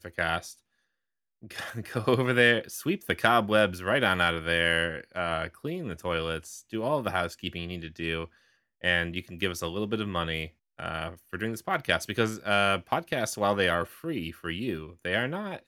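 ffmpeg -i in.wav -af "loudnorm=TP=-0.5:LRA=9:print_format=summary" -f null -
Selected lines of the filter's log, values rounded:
Input Integrated:    -28.6 LUFS
Input True Peak:      -6.2 dBTP
Input LRA:             5.2 LU
Input Threshold:     -38.8 LUFS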